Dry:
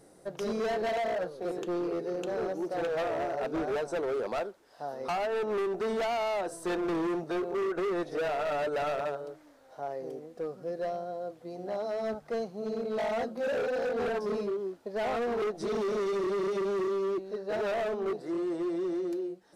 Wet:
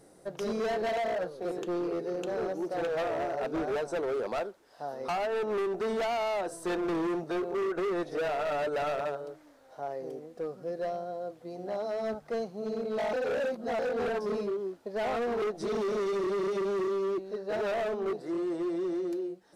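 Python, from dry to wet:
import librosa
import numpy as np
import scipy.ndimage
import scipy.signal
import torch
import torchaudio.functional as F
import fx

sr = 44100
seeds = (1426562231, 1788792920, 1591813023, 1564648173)

y = fx.edit(x, sr, fx.reverse_span(start_s=13.13, length_s=0.66), tone=tone)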